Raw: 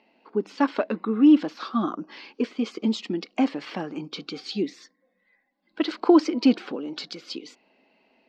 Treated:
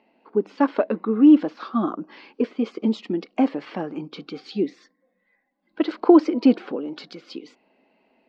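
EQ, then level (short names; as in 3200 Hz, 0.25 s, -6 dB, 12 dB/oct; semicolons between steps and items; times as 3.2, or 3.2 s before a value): dynamic EQ 510 Hz, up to +4 dB, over -34 dBFS, Q 1.2; LPF 1800 Hz 6 dB/oct; +1.5 dB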